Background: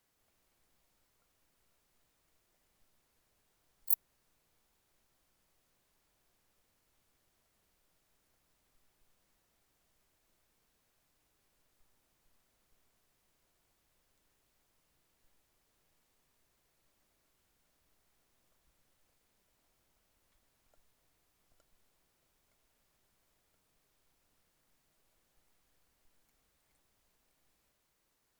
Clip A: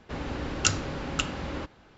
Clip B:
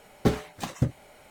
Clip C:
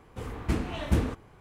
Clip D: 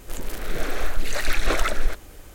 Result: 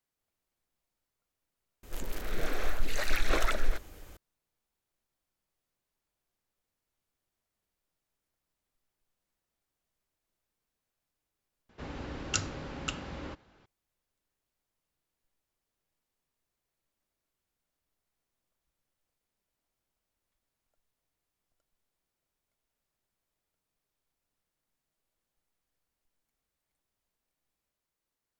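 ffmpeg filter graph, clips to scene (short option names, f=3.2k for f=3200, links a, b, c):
-filter_complex "[0:a]volume=-10.5dB[a];[4:a]equalizer=f=9.3k:t=o:w=0.52:g=-4.5[b];[a]asplit=3[c][d][e];[c]atrim=end=1.834[f];[b]atrim=end=2.34,asetpts=PTS-STARTPTS,volume=-6dB[g];[d]atrim=start=4.166:end=11.694[h];[1:a]atrim=end=1.97,asetpts=PTS-STARTPTS,volume=-7dB[i];[e]atrim=start=13.656[j];[f][g]acrossfade=d=0.004:c1=hsin:c2=hsin[k];[k][h]acrossfade=d=0.004:c1=hsin:c2=hsin[l];[l][i]acrossfade=d=0.004:c1=hsin:c2=hsin[m];[m][j]acrossfade=d=0.004:c1=hsin:c2=hsin"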